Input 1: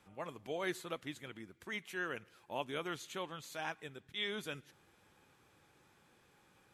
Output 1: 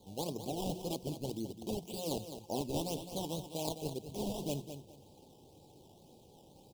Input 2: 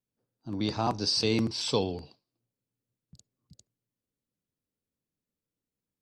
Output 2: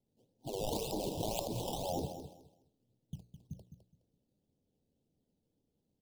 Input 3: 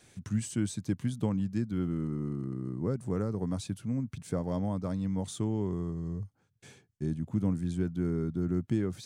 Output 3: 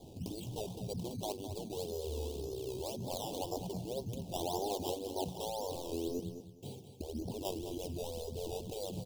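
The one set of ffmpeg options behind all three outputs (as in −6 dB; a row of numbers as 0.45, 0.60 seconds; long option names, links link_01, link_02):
-filter_complex "[0:a]bandreject=frequency=60:width_type=h:width=6,bandreject=frequency=120:width_type=h:width=6,bandreject=frequency=180:width_type=h:width=6,afftfilt=real='re*lt(hypot(re,im),0.0501)':imag='im*lt(hypot(re,im),0.0501)':win_size=1024:overlap=0.75,lowpass=frequency=3200:width=0.5412,lowpass=frequency=3200:width=1.3066,highshelf=frequency=2000:gain=-8.5,acrusher=samples=14:mix=1:aa=0.000001:lfo=1:lforange=14:lforate=1.9,asuperstop=centerf=1600:order=8:qfactor=0.75,asplit=2[link_01][link_02];[link_02]aecho=0:1:209|418|627:0.316|0.0696|0.0153[link_03];[link_01][link_03]amix=inputs=2:normalize=0,volume=11.5dB"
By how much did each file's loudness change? +3.0, −10.0, −7.0 LU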